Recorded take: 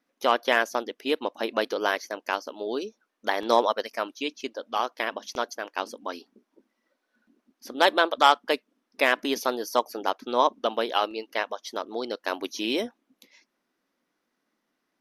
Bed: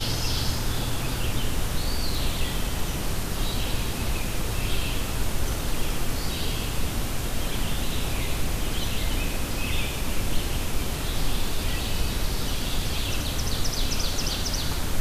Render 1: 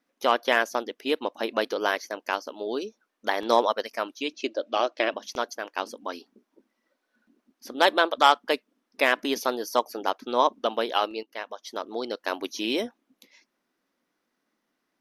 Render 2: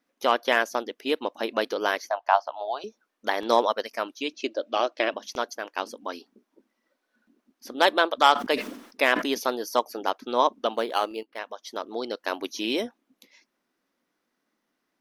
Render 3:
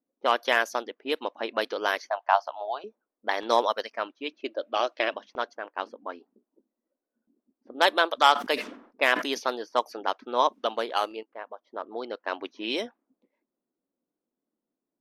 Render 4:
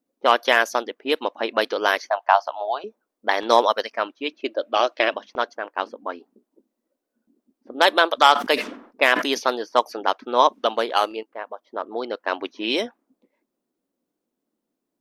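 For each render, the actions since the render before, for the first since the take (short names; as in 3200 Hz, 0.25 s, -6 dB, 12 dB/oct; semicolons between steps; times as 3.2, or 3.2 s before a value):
4.33–5.14 speaker cabinet 110–8100 Hz, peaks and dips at 110 Hz -8 dB, 330 Hz +10 dB, 600 Hz +10 dB, 960 Hz -5 dB, 2600 Hz +6 dB, 4000 Hz +4 dB; 11.23–11.88 fade in, from -13 dB
2.1–2.84 EQ curve 110 Hz 0 dB, 170 Hz -29 dB, 450 Hz -16 dB, 700 Hz +14 dB, 2300 Hz -5 dB, 3700 Hz -1 dB, 9600 Hz -20 dB; 8.32–9.35 sustainer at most 88 dB/s; 10.75–11.39 decimation joined by straight lines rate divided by 6×
low-pass opened by the level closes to 420 Hz, open at -20.5 dBFS; low shelf 310 Hz -9.5 dB
gain +6.5 dB; limiter -2 dBFS, peak gain reduction 2.5 dB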